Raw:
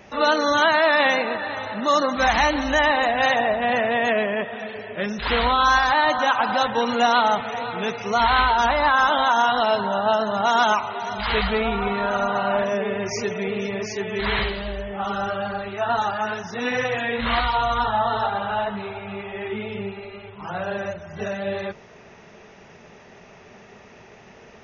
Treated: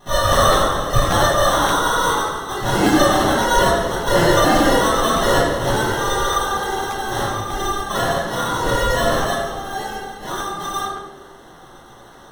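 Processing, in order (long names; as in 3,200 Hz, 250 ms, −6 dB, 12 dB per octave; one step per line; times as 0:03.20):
mains-hum notches 50/100/150/200 Hz
sample-rate reduction 1,200 Hz, jitter 0%
convolution reverb RT60 2.0 s, pre-delay 3 ms, DRR −8 dB
wrong playback speed 7.5 ips tape played at 15 ips
regular buffer underruns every 0.58 s, samples 512, repeat, from 0:00.52
level −9 dB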